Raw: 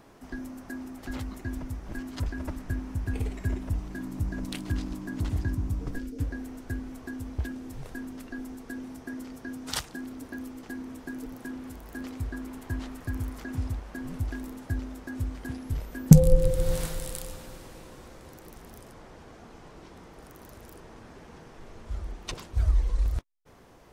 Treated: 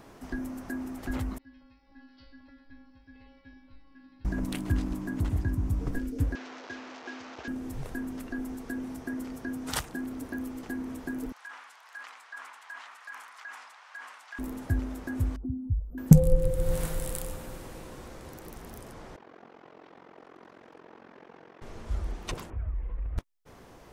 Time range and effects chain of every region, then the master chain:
0:01.38–0:04.25: stiff-string resonator 270 Hz, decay 0.83 s, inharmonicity 0.002 + bad sample-rate conversion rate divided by 4×, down none, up filtered
0:06.35–0:07.48: linear delta modulator 32 kbit/s, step −37 dBFS + high-pass filter 470 Hz
0:11.32–0:14.39: high-pass filter 990 Hz 24 dB per octave + high-frequency loss of the air 77 metres + level that may fall only so fast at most 50 dB per second
0:15.36–0:15.98: expanding power law on the bin magnitudes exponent 2.1 + linear-phase brick-wall band-stop 1,500–9,500 Hz
0:19.16–0:21.62: band-pass filter 270–2,800 Hz + amplitude modulation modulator 44 Hz, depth 80%
0:22.50–0:23.18: Butterworth low-pass 2,600 Hz + downward compressor 2.5 to 1, threshold −39 dBFS
whole clip: dynamic equaliser 4,600 Hz, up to −7 dB, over −58 dBFS, Q 0.87; speech leveller within 3 dB 0.5 s

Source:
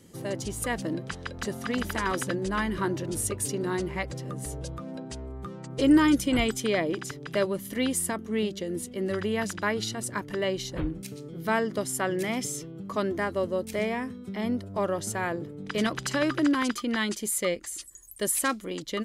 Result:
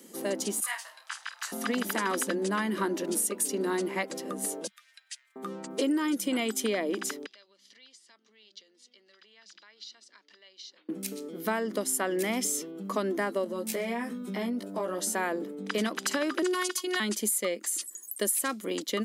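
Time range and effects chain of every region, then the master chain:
0:00.60–0:01.52: Butterworth high-pass 900 Hz + flutter between parallel walls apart 8.8 metres, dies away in 0.24 s + micro pitch shift up and down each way 50 cents
0:04.67–0:05.36: Chebyshev high-pass filter 1,800 Hz, order 4 + high-shelf EQ 6,000 Hz −5.5 dB
0:07.26–0:10.89: downward compressor 12 to 1, threshold −34 dBFS + resonant band-pass 4,700 Hz, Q 2.5 + high-frequency loss of the air 140 metres
0:13.44–0:15.15: double-tracking delay 17 ms −3 dB + downward compressor 5 to 1, threshold −31 dBFS
0:16.42–0:17.00: parametric band 8,400 Hz +9 dB 2.9 octaves + phases set to zero 364 Hz
whole clip: elliptic high-pass filter 200 Hz, stop band 40 dB; high-shelf EQ 10,000 Hz +11 dB; downward compressor 6 to 1, threshold −29 dBFS; level +3.5 dB

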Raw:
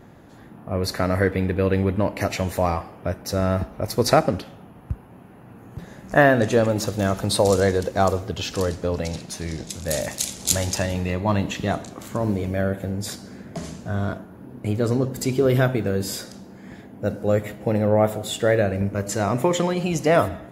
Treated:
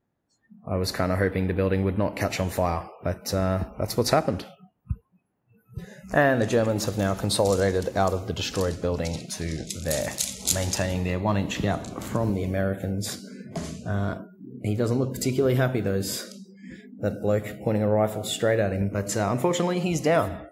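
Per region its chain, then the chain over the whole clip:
0:11.56–0:12.30: low-shelf EQ 77 Hz +6.5 dB + multiband upward and downward compressor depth 40%
whole clip: noise reduction from a noise print of the clip's start 30 dB; downward compressor 1.5 to 1, threshold −24 dBFS

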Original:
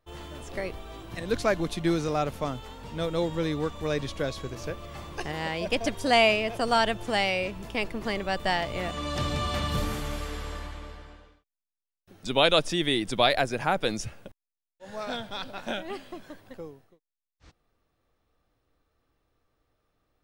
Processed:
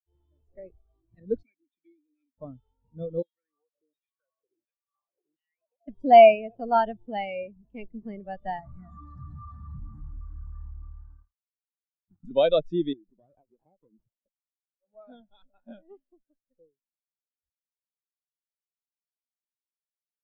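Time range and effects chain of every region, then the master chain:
0:01.43–0:02.38: formant filter i + spectral tilt +3 dB per octave
0:03.22–0:05.88: auto-filter band-pass saw down 1.4 Hz 260–3,800 Hz + downward compressor 20 to 1, threshold −42 dBFS
0:08.59–0:12.31: leveller curve on the samples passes 5 + phaser with its sweep stopped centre 1,200 Hz, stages 4 + downward compressor 10 to 1, threshold −29 dBFS
0:12.93–0:14.95: high-pass filter 210 Hz + downward compressor 5 to 1, threshold −36 dBFS + windowed peak hold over 17 samples
whole clip: dynamic equaliser 200 Hz, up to +3 dB, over −40 dBFS, Q 0.99; every bin expanded away from the loudest bin 2.5 to 1; level +2 dB

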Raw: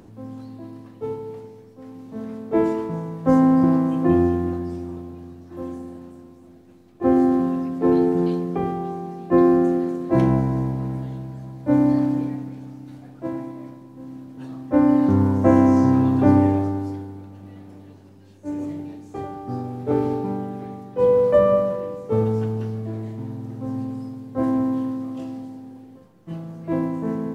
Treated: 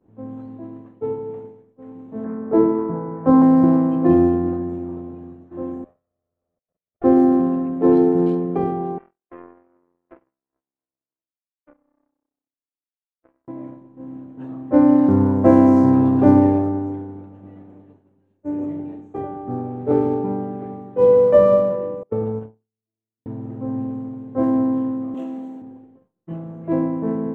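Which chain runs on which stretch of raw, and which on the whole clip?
0:02.24–0:03.42: low-pass filter 1,700 Hz 24 dB per octave + double-tracking delay 22 ms −5.5 dB + one half of a high-frequency compander encoder only
0:05.84–0:07.04: lower of the sound and its delayed copy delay 1.6 ms + output level in coarse steps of 18 dB
0:08.98–0:13.48: downward compressor 10 to 1, threshold −26 dBFS + loudspeaker in its box 430–2,500 Hz, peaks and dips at 470 Hz −3 dB, 850 Hz −9 dB, 1,200 Hz +4 dB, 1,800 Hz −5 dB + power curve on the samples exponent 3
0:22.03–0:23.26: noise gate −22 dBFS, range −30 dB + downward compressor 2.5 to 1, threshold −23 dBFS
0:25.14–0:25.62: high-pass filter 180 Hz 24 dB per octave + high-shelf EQ 2,700 Hz +11.5 dB
whole clip: adaptive Wiener filter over 9 samples; downward expander −37 dBFS; parametric band 430 Hz +6.5 dB 2.9 octaves; level −2.5 dB

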